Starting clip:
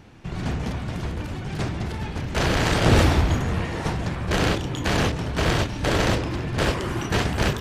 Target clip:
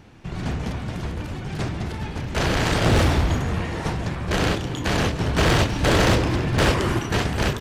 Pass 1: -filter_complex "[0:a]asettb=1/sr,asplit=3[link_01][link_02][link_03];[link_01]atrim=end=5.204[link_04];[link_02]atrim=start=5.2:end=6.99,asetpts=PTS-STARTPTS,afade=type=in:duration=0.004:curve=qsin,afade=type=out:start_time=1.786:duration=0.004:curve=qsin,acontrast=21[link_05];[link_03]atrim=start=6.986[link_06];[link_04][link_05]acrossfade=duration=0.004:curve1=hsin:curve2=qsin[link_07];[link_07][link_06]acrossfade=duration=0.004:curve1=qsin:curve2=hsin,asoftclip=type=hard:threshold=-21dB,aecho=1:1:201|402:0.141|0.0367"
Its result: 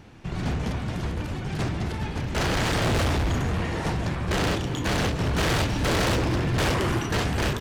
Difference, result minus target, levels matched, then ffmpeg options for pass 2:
hard clipping: distortion +11 dB
-filter_complex "[0:a]asettb=1/sr,asplit=3[link_01][link_02][link_03];[link_01]atrim=end=5.204[link_04];[link_02]atrim=start=5.2:end=6.99,asetpts=PTS-STARTPTS,afade=type=in:duration=0.004:curve=qsin,afade=type=out:start_time=1.786:duration=0.004:curve=qsin,acontrast=21[link_05];[link_03]atrim=start=6.986[link_06];[link_04][link_05]acrossfade=duration=0.004:curve1=hsin:curve2=qsin[link_07];[link_07][link_06]acrossfade=duration=0.004:curve1=qsin:curve2=hsin,asoftclip=type=hard:threshold=-12.5dB,aecho=1:1:201|402:0.141|0.0367"

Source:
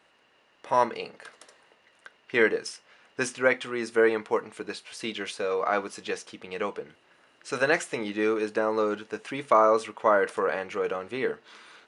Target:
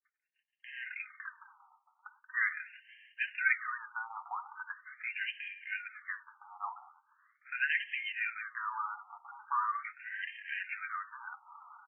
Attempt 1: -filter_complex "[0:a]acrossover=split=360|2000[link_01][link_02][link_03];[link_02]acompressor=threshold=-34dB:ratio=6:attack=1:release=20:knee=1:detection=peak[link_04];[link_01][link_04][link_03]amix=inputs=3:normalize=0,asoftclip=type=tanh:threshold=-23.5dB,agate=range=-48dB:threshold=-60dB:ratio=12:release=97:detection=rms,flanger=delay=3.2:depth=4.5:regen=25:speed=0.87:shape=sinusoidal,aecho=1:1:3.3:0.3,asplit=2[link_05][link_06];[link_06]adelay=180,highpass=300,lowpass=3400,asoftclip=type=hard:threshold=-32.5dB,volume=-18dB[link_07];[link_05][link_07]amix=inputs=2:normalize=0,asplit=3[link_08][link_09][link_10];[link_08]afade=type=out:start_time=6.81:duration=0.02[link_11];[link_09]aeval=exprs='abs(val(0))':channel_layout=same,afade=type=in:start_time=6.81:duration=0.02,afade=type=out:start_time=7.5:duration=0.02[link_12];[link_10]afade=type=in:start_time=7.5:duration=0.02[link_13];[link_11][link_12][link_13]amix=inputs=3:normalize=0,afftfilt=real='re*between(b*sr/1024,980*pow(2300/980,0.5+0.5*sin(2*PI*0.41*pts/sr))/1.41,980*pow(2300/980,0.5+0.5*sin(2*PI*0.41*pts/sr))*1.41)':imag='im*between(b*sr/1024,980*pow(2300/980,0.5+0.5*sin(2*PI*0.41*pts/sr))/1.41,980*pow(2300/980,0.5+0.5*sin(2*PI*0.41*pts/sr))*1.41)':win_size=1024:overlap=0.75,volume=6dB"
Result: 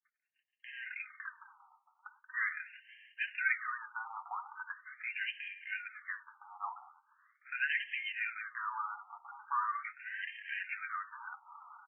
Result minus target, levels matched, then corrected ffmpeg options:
soft clipping: distortion +15 dB
-filter_complex "[0:a]acrossover=split=360|2000[link_01][link_02][link_03];[link_02]acompressor=threshold=-34dB:ratio=6:attack=1:release=20:knee=1:detection=peak[link_04];[link_01][link_04][link_03]amix=inputs=3:normalize=0,asoftclip=type=tanh:threshold=-13.5dB,agate=range=-48dB:threshold=-60dB:ratio=12:release=97:detection=rms,flanger=delay=3.2:depth=4.5:regen=25:speed=0.87:shape=sinusoidal,aecho=1:1:3.3:0.3,asplit=2[link_05][link_06];[link_06]adelay=180,highpass=300,lowpass=3400,asoftclip=type=hard:threshold=-32.5dB,volume=-18dB[link_07];[link_05][link_07]amix=inputs=2:normalize=0,asplit=3[link_08][link_09][link_10];[link_08]afade=type=out:start_time=6.81:duration=0.02[link_11];[link_09]aeval=exprs='abs(val(0))':channel_layout=same,afade=type=in:start_time=6.81:duration=0.02,afade=type=out:start_time=7.5:duration=0.02[link_12];[link_10]afade=type=in:start_time=7.5:duration=0.02[link_13];[link_11][link_12][link_13]amix=inputs=3:normalize=0,afftfilt=real='re*between(b*sr/1024,980*pow(2300/980,0.5+0.5*sin(2*PI*0.41*pts/sr))/1.41,980*pow(2300/980,0.5+0.5*sin(2*PI*0.41*pts/sr))*1.41)':imag='im*between(b*sr/1024,980*pow(2300/980,0.5+0.5*sin(2*PI*0.41*pts/sr))/1.41,980*pow(2300/980,0.5+0.5*sin(2*PI*0.41*pts/sr))*1.41)':win_size=1024:overlap=0.75,volume=6dB"

